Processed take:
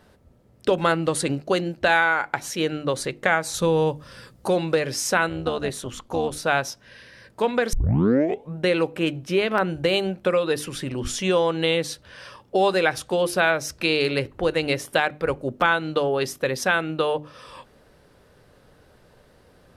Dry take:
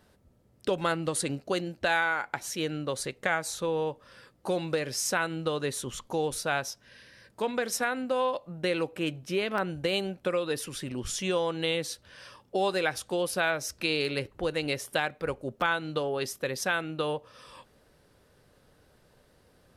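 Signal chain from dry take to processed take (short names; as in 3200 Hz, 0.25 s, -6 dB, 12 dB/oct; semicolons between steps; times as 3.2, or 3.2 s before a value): high shelf 4100 Hz -6 dB; notches 50/100/150/200/250/300/350 Hz; 3.54–4.48 tone controls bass +8 dB, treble +9 dB; 5.29–6.43 AM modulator 230 Hz, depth 55%; 7.73 tape start 0.83 s; gain +8 dB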